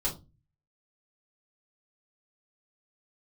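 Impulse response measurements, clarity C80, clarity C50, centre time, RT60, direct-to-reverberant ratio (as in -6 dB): 18.5 dB, 11.5 dB, 19 ms, 0.25 s, -4.5 dB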